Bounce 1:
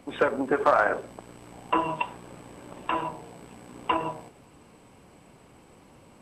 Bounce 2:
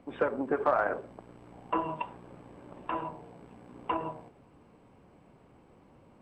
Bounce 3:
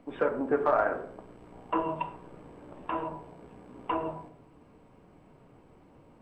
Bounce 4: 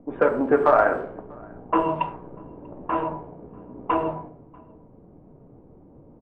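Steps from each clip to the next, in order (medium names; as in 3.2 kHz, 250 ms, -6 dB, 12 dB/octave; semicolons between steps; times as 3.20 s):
low-pass 1.3 kHz 6 dB/octave; trim -4 dB
on a send at -3.5 dB: distance through air 460 m + reverberation RT60 0.60 s, pre-delay 3 ms
level-controlled noise filter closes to 510 Hz, open at -23.5 dBFS; echo from a far wall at 110 m, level -27 dB; trim +8 dB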